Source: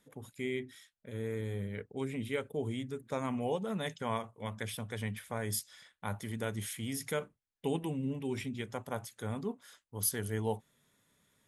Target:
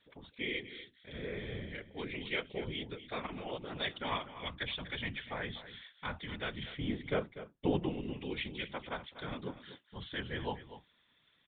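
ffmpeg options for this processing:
-filter_complex "[0:a]asettb=1/sr,asplit=3[s0][s1][s2];[s0]atrim=end=3.214[s3];[s1]atrim=start=3.21:end=3.8,asetpts=PTS-STARTPTS,afade=t=in:d=0.004:c=qsin,afade=t=out:st=0.586:d=0.004:c=qsin,tremolo=f=110:d=0.919[s4];[s2]atrim=start=3.796[s5];[s3][s4]acrossfade=d=0.004:c1=hsin:c2=qsin[s6];[s6][s5]acrossfade=d=0.004:c1=qsin:c2=hsin,asettb=1/sr,asplit=3[s7][s8][s9];[s7]atrim=end=6.634[s10];[s8]atrim=start=6.63:end=7.89,asetpts=PTS-STARTPTS,afade=t=in:d=0.004:c=qsin,afade=t=out:st=1.256:d=0.004:c=qsin,tiltshelf=f=1200:g=9[s11];[s9]atrim=start=7.886[s12];[s10][s11]acrossfade=d=0.004:c1=hsin:c2=qsin[s13];[s13][s12]acrossfade=d=0.004:c1=qsin:c2=hsin,afftfilt=real='hypot(re,im)*cos(2*PI*random(0))':imag='hypot(re,im)*sin(2*PI*random(1))':win_size=512:overlap=0.75,crystalizer=i=10:c=0,aresample=8000,aresample=44100,asplit=2[s14][s15];[s15]aecho=0:1:244:0.211[s16];[s14][s16]amix=inputs=2:normalize=0"

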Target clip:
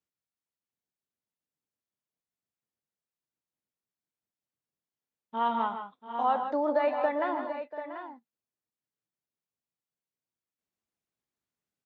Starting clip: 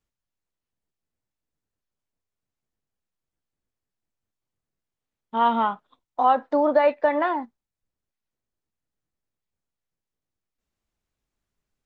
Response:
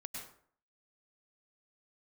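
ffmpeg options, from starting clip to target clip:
-filter_complex "[0:a]highpass=130,asplit=2[s0][s1];[s1]aecho=0:1:111|140|156|687|738:0.141|0.15|0.355|0.188|0.299[s2];[s0][s2]amix=inputs=2:normalize=0,volume=0.398"

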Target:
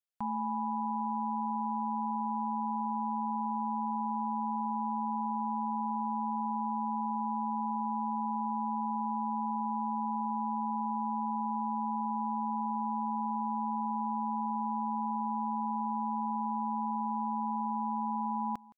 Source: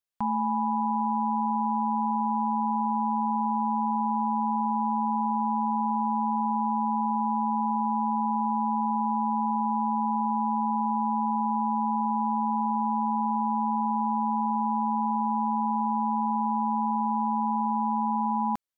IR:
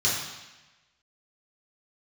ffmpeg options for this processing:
-af "aecho=1:1:167:0.0841,volume=0.447"

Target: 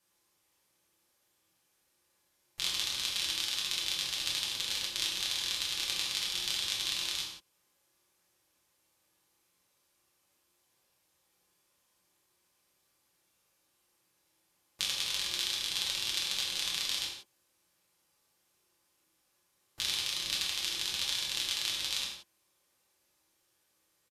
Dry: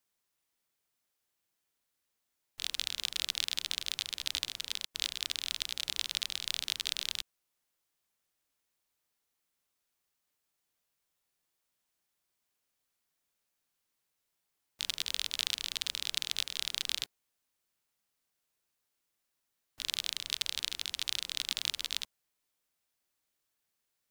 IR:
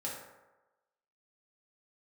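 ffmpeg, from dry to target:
-filter_complex "[0:a]acompressor=threshold=0.0178:ratio=6[s0];[1:a]atrim=start_sample=2205,afade=t=out:st=0.17:d=0.01,atrim=end_sample=7938,asetrate=28224,aresample=44100[s1];[s0][s1]afir=irnorm=-1:irlink=0,aresample=32000,aresample=44100,volume=2.24"

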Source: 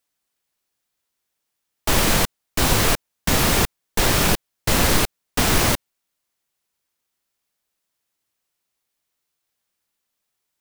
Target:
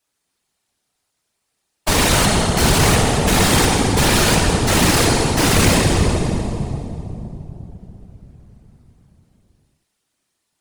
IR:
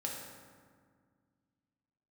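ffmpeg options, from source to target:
-filter_complex "[1:a]atrim=start_sample=2205,asetrate=22050,aresample=44100[s0];[0:a][s0]afir=irnorm=-1:irlink=0,asoftclip=type=hard:threshold=0.224,afftfilt=real='hypot(re,im)*cos(2*PI*random(0))':imag='hypot(re,im)*sin(2*PI*random(1))':win_size=512:overlap=0.75,volume=2.51"

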